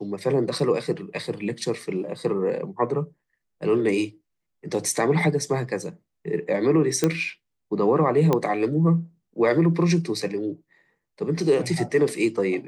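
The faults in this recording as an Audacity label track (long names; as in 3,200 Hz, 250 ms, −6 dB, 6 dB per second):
7.040000	7.040000	click −7 dBFS
8.330000	8.330000	click −9 dBFS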